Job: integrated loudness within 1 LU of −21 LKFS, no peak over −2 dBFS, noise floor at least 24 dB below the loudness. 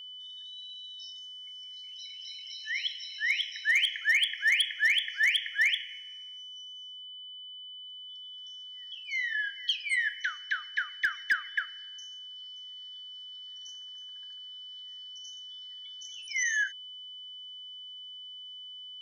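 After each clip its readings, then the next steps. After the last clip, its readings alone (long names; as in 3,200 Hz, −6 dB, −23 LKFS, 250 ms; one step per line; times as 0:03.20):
share of clipped samples 0.3%; peaks flattened at −19.5 dBFS; interfering tone 3,000 Hz; level of the tone −42 dBFS; integrated loudness −30.0 LKFS; sample peak −19.5 dBFS; target loudness −21.0 LKFS
→ clipped peaks rebuilt −19.5 dBFS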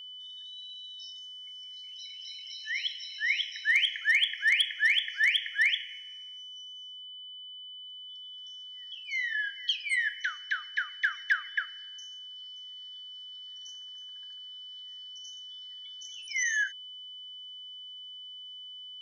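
share of clipped samples 0.0%; interfering tone 3,000 Hz; level of the tone −42 dBFS
→ notch filter 3,000 Hz, Q 30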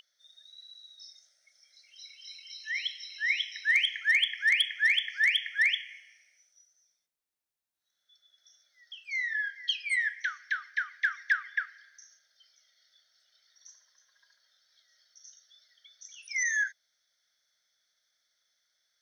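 interfering tone none found; integrated loudness −28.0 LKFS; sample peak −13.5 dBFS; target loudness −21.0 LKFS
→ level +7 dB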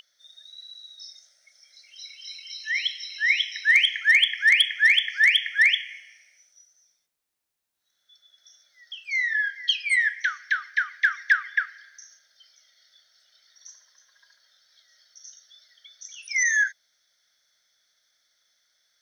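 integrated loudness −21.0 LKFS; sample peak −6.5 dBFS; background noise floor −74 dBFS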